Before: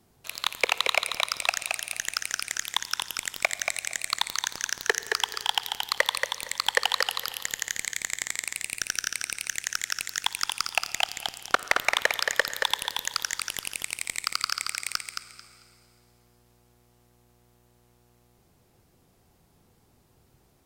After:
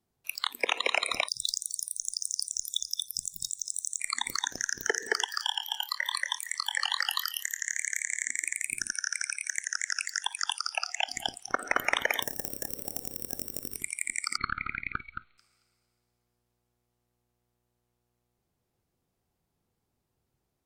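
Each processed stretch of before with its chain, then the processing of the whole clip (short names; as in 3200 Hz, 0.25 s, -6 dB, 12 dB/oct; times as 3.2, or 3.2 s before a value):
1.28–4 block floating point 7-bit + brick-wall FIR band-stop 210–3400 Hz
5.25–8.25 HPF 900 Hz 24 dB/oct + doubler 25 ms -12 dB
8.92–11.09 steep high-pass 410 Hz 48 dB/oct + high shelf 11000 Hz -5.5 dB
12.22–13.76 sample sorter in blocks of 16 samples + bell 9300 Hz -7.5 dB 2 oct + spectral compressor 4:1
14.37–15.38 half-wave gain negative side -3 dB + brick-wall FIR low-pass 4400 Hz
whole clip: dynamic EQ 270 Hz, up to +6 dB, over -53 dBFS, Q 1.8; limiter -14 dBFS; spectral noise reduction 20 dB; gain +3 dB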